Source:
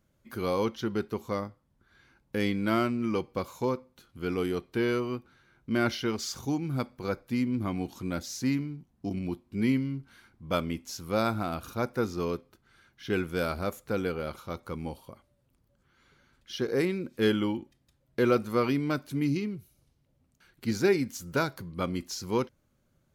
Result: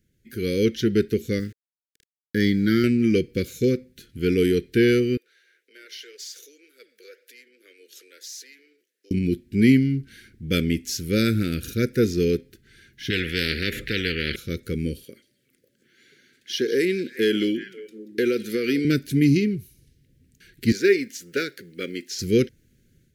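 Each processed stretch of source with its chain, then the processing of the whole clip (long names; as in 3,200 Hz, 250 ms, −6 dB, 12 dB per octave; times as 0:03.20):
0:01.39–0:02.84: high-pass filter 83 Hz + phaser with its sweep stopped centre 2,600 Hz, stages 6 + centre clipping without the shift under −53.5 dBFS
0:05.17–0:09.11: downward compressor 4 to 1, threshold −41 dBFS + Butterworth high-pass 460 Hz + flanger 1.9 Hz, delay 2 ms, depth 8.9 ms, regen +86%
0:13.10–0:14.36: high-frequency loss of the air 460 metres + every bin compressed towards the loudest bin 4 to 1
0:15.04–0:18.85: high-pass filter 290 Hz + echo through a band-pass that steps 182 ms, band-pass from 4,600 Hz, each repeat −1.4 octaves, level −11 dB + downward compressor 3 to 1, threshold −27 dBFS
0:20.72–0:22.19: high-pass filter 460 Hz + high-shelf EQ 5,200 Hz −12 dB + log-companded quantiser 8 bits
whole clip: elliptic band-stop filter 450–1,700 Hz, stop band 60 dB; automatic gain control gain up to 8 dB; level +3 dB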